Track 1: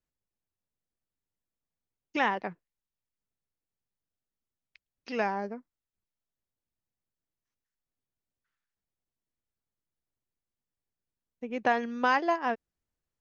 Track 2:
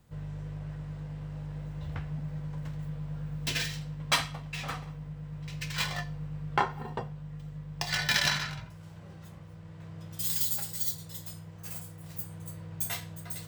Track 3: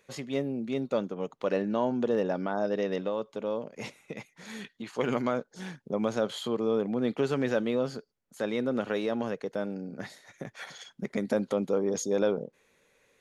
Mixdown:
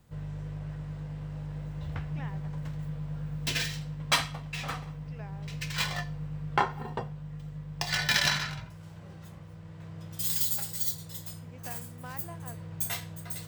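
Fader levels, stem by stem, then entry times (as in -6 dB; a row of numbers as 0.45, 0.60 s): -19.5 dB, +1.0 dB, off; 0.00 s, 0.00 s, off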